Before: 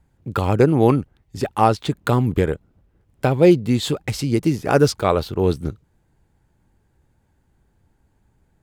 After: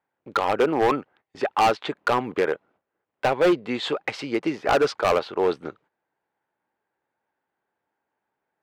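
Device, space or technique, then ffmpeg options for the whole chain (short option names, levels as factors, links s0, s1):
walkie-talkie: -af "highpass=590,lowpass=2400,asoftclip=type=hard:threshold=0.1,agate=range=0.282:threshold=0.00112:ratio=16:detection=peak,volume=1.88"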